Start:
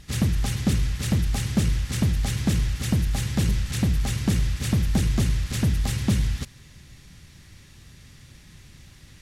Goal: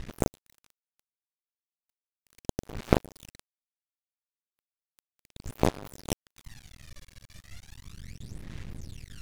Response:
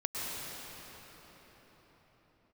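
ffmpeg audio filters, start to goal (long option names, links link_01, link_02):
-af "aeval=exprs='0.335*(cos(1*acos(clip(val(0)/0.335,-1,1)))-cos(1*PI/2))+0.0168*(cos(4*acos(clip(val(0)/0.335,-1,1)))-cos(4*PI/2))+0.00266*(cos(5*acos(clip(val(0)/0.335,-1,1)))-cos(5*PI/2))+0.0944*(cos(8*acos(clip(val(0)/0.335,-1,1)))-cos(8*PI/2))':channel_layout=same,aphaser=in_gain=1:out_gain=1:delay=1.8:decay=0.77:speed=0.35:type=sinusoidal,aeval=exprs='max(val(0),0)':channel_layout=same"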